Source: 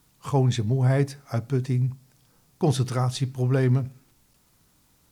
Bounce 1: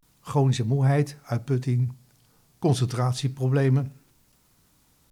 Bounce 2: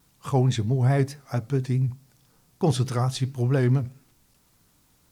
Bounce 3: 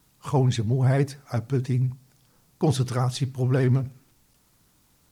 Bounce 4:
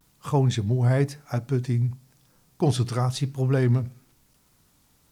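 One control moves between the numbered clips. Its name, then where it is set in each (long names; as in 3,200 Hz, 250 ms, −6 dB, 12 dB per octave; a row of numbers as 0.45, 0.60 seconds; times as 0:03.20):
pitch vibrato, speed: 0.32, 4.6, 15, 0.98 Hertz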